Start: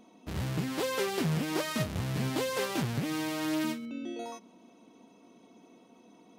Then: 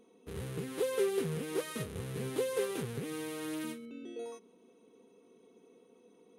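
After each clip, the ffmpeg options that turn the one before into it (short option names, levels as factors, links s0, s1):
-af "superequalizer=7b=3.55:8b=0.631:9b=0.708:14b=0.631:16b=2.51,volume=0.398"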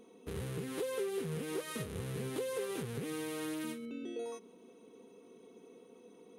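-filter_complex "[0:a]asplit=2[s0][s1];[s1]alimiter=level_in=1.68:limit=0.0631:level=0:latency=1:release=121,volume=0.596,volume=1.26[s2];[s0][s2]amix=inputs=2:normalize=0,acompressor=threshold=0.0141:ratio=2,volume=0.75"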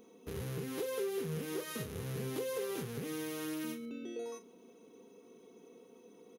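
-filter_complex "[0:a]asplit=2[s0][s1];[s1]adelay=38,volume=0.266[s2];[s0][s2]amix=inputs=2:normalize=0,aexciter=amount=1:drive=7.1:freq=5000,volume=0.891"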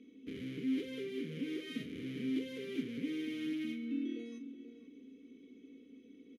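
-filter_complex "[0:a]aeval=exprs='val(0)+0.000282*(sin(2*PI*60*n/s)+sin(2*PI*2*60*n/s)/2+sin(2*PI*3*60*n/s)/3+sin(2*PI*4*60*n/s)/4+sin(2*PI*5*60*n/s)/5)':c=same,asplit=3[s0][s1][s2];[s0]bandpass=f=270:t=q:w=8,volume=1[s3];[s1]bandpass=f=2290:t=q:w=8,volume=0.501[s4];[s2]bandpass=f=3010:t=q:w=8,volume=0.355[s5];[s3][s4][s5]amix=inputs=3:normalize=0,asplit=2[s6][s7];[s7]adelay=484,volume=0.282,highshelf=f=4000:g=-10.9[s8];[s6][s8]amix=inputs=2:normalize=0,volume=3.76"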